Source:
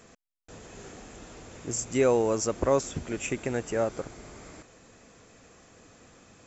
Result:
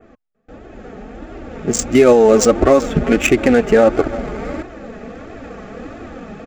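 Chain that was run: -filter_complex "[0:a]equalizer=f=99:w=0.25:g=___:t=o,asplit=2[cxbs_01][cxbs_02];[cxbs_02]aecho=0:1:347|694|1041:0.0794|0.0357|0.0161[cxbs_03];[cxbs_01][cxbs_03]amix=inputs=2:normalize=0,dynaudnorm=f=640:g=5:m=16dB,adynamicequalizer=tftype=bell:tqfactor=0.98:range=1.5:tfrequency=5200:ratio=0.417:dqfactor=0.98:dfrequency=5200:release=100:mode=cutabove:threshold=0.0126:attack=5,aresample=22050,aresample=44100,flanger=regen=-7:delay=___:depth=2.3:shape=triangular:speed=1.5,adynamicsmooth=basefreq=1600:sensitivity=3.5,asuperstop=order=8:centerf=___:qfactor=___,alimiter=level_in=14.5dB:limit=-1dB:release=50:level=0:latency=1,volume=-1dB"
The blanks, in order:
-4, 2.7, 1000, 7.5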